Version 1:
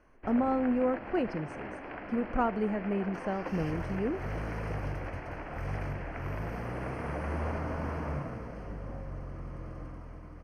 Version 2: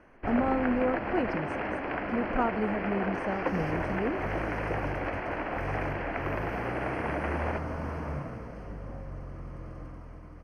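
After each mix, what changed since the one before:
first sound +9.0 dB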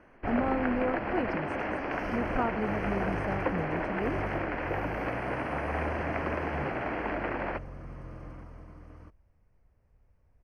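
second sound: entry -1.55 s; reverb: off

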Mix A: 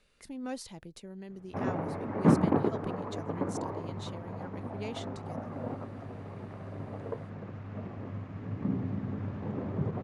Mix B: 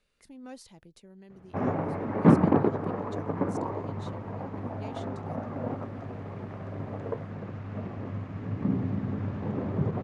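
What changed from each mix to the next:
speech -6.5 dB; background +4.0 dB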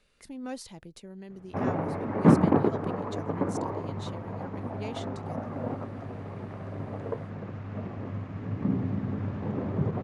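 speech +7.0 dB

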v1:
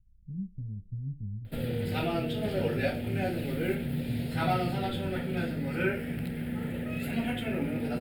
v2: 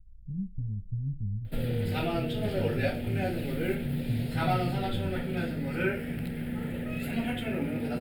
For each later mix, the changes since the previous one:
speech: add bass shelf 81 Hz +12 dB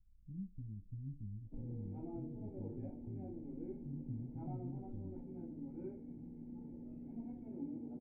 background -7.5 dB; master: add cascade formant filter u

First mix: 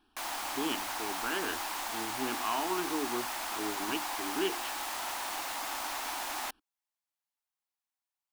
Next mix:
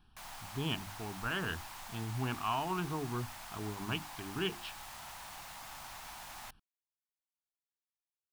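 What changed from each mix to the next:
background -11.0 dB; master: add resonant low shelf 210 Hz +12.5 dB, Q 3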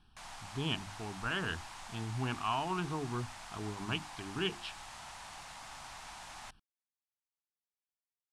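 speech: add treble shelf 4.7 kHz +6 dB; master: add low-pass 9.5 kHz 24 dB/octave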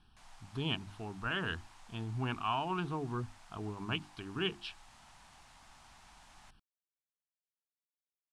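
background -11.5 dB

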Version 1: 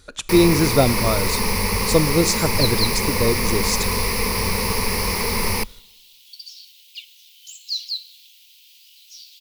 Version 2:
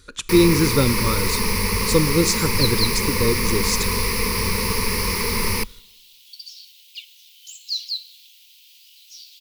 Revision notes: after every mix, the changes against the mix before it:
master: add Butterworth band-stop 690 Hz, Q 1.8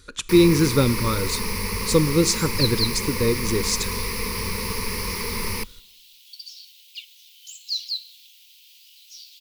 first sound -5.5 dB; second sound: send off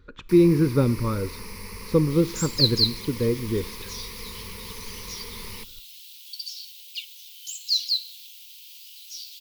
speech: add tape spacing loss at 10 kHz 43 dB; first sound -12.0 dB; second sound: add tilt EQ +2 dB/octave

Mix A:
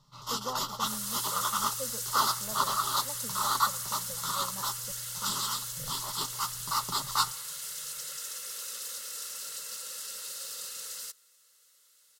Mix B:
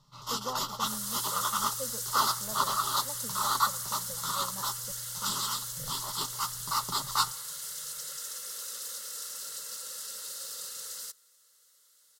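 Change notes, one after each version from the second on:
second sound: add peaking EQ 2.5 kHz -8 dB 0.44 oct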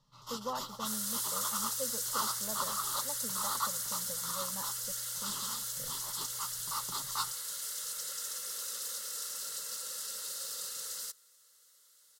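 first sound -8.5 dB

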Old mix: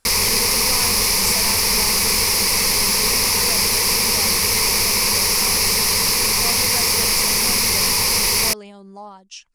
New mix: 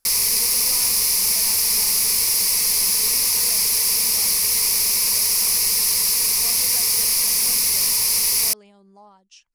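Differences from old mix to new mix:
speech -11.0 dB; background: add pre-emphasis filter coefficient 0.8

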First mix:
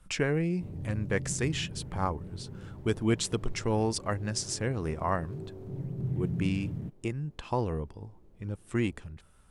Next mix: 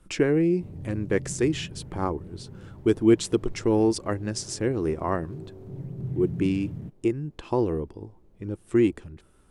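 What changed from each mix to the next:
speech: add peaking EQ 340 Hz +12.5 dB 0.84 oct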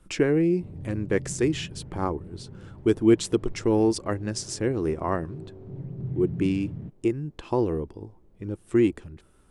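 background: add distance through air 180 m

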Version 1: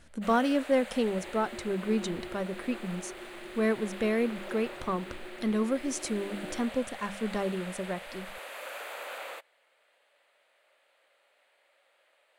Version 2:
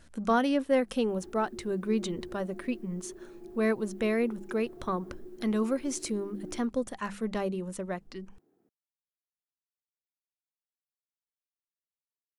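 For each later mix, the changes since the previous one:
first sound: muted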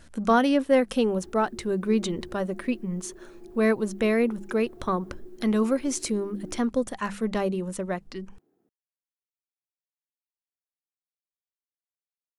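speech +5.0 dB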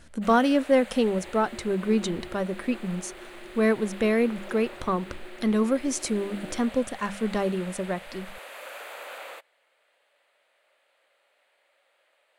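first sound: unmuted

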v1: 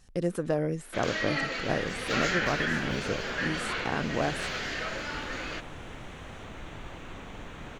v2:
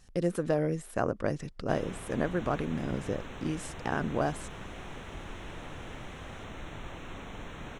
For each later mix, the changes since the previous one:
first sound: muted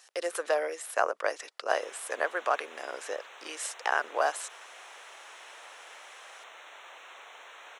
speech +8.5 dB; master: add Bessel high-pass 830 Hz, order 6

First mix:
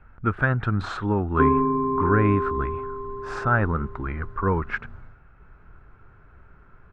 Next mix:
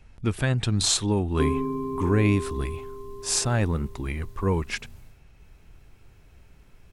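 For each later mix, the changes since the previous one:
background -4.5 dB; master: remove resonant low-pass 1.4 kHz, resonance Q 5.4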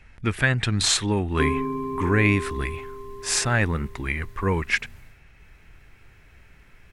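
master: add peaking EQ 1.9 kHz +12 dB 1.1 oct

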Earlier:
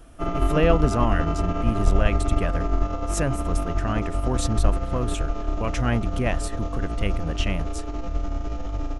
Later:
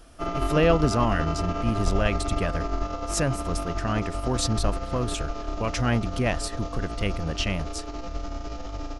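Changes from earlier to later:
background: add bass shelf 300 Hz -7 dB; master: add peaking EQ 4.8 kHz +8 dB 0.66 oct

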